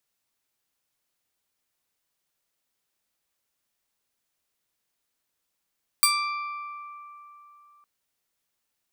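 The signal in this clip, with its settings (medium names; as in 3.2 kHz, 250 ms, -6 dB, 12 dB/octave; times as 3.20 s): plucked string D6, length 1.81 s, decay 3.38 s, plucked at 0.35, bright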